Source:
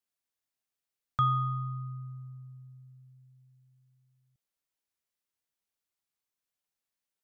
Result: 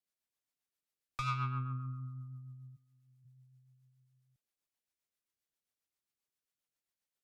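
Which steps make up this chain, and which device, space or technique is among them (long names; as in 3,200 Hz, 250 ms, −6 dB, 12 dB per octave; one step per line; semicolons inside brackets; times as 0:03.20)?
overdriven rotary cabinet (tube saturation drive 32 dB, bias 0.6; rotating-speaker cabinet horn 7.5 Hz)
0:02.75–0:03.24: high-pass filter 430 Hz → 160 Hz 12 dB per octave
level +2.5 dB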